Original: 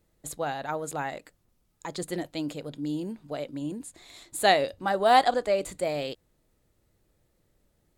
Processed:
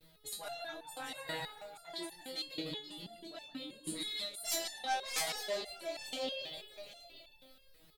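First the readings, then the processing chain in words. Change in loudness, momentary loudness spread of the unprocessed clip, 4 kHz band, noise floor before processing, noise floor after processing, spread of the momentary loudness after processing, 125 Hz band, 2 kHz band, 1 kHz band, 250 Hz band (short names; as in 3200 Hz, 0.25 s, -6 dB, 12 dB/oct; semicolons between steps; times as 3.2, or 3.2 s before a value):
-12.0 dB, 18 LU, -3.0 dB, -71 dBFS, -64 dBFS, 15 LU, -15.5 dB, -10.5 dB, -16.5 dB, -14.0 dB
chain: regenerating reverse delay 0.126 s, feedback 53%, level -11 dB; in parallel at -5.5 dB: soft clip -17.5 dBFS, distortion -13 dB; on the sum: resonant high shelf 5200 Hz -9.5 dB, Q 3; doubler 23 ms -3 dB; feedback echo 0.157 s, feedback 35%, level -6 dB; sine folder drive 14 dB, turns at -1 dBFS; reverb removal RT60 0.7 s; reverse; compressor 10:1, threshold -21 dBFS, peak gain reduction 17.5 dB; reverse; pre-emphasis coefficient 0.8; echo 0.881 s -11 dB; gate with hold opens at -52 dBFS; stepped resonator 6.2 Hz 160–880 Hz; gain +7.5 dB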